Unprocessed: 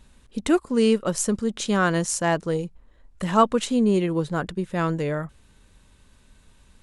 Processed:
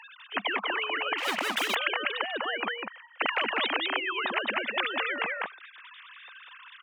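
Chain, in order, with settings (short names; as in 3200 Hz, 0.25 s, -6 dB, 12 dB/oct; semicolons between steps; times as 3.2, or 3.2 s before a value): sine-wave speech; on a send: echo 0.198 s -7 dB; 1.18–1.75 on the sum: sample leveller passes 1; HPF 1100 Hz 12 dB/oct; spectral compressor 10:1; gain -6.5 dB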